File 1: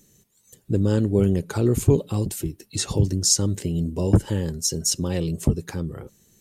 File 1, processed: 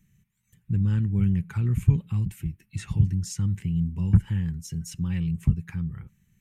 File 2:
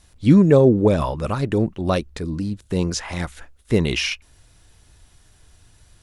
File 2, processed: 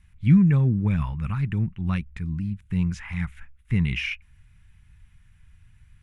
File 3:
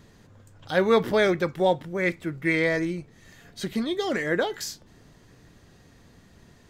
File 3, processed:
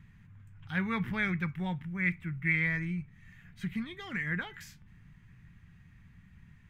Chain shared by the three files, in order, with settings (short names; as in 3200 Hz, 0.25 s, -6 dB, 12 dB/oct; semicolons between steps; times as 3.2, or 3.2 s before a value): EQ curve 180 Hz 0 dB, 290 Hz -17 dB, 590 Hz -28 dB, 850 Hz -14 dB, 2300 Hz -1 dB, 4400 Hz -21 dB, 14000 Hz -15 dB